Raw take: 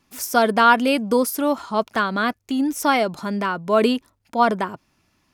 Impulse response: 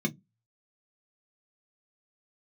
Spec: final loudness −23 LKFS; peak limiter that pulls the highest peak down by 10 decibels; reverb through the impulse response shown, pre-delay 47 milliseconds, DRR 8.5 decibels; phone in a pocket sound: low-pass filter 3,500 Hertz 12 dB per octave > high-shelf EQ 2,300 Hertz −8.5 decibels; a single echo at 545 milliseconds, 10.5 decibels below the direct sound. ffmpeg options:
-filter_complex "[0:a]alimiter=limit=-13dB:level=0:latency=1,aecho=1:1:545:0.299,asplit=2[link_01][link_02];[1:a]atrim=start_sample=2205,adelay=47[link_03];[link_02][link_03]afir=irnorm=-1:irlink=0,volume=-14dB[link_04];[link_01][link_04]amix=inputs=2:normalize=0,lowpass=3500,highshelf=frequency=2300:gain=-8.5,volume=-3.5dB"

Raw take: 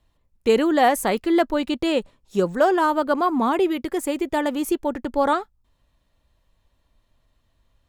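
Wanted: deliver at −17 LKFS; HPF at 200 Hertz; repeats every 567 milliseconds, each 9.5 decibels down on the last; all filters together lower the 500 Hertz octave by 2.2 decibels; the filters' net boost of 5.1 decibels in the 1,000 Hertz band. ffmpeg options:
ffmpeg -i in.wav -af "highpass=200,equalizer=frequency=500:width_type=o:gain=-5.5,equalizer=frequency=1000:width_type=o:gain=8.5,aecho=1:1:567|1134|1701|2268:0.335|0.111|0.0365|0.012,volume=3.5dB" out.wav

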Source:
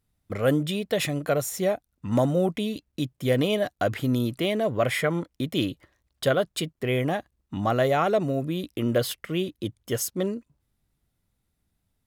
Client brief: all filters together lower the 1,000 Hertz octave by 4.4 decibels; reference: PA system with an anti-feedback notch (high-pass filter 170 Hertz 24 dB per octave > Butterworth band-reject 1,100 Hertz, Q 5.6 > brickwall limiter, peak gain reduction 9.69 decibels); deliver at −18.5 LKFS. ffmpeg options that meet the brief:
ffmpeg -i in.wav -af "highpass=frequency=170:width=0.5412,highpass=frequency=170:width=1.3066,asuperstop=centerf=1100:order=8:qfactor=5.6,equalizer=frequency=1000:width_type=o:gain=-6.5,volume=13.5dB,alimiter=limit=-8dB:level=0:latency=1" out.wav

